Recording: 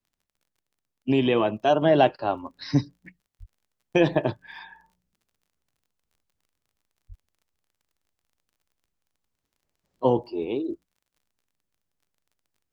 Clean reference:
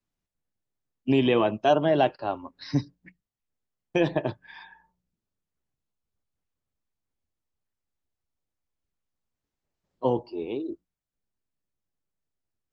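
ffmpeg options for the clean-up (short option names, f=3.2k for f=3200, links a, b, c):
-filter_complex "[0:a]adeclick=t=4,asplit=3[a][b][c];[a]afade=t=out:st=3.39:d=0.02[d];[b]highpass=f=140:w=0.5412,highpass=f=140:w=1.3066,afade=t=in:st=3.39:d=0.02,afade=t=out:st=3.51:d=0.02[e];[c]afade=t=in:st=3.51:d=0.02[f];[d][e][f]amix=inputs=3:normalize=0,asplit=3[g][h][i];[g]afade=t=out:st=7.08:d=0.02[j];[h]highpass=f=140:w=0.5412,highpass=f=140:w=1.3066,afade=t=in:st=7.08:d=0.02,afade=t=out:st=7.2:d=0.02[k];[i]afade=t=in:st=7.2:d=0.02[l];[j][k][l]amix=inputs=3:normalize=0,asetnsamples=n=441:p=0,asendcmd='1.82 volume volume -3.5dB',volume=0dB"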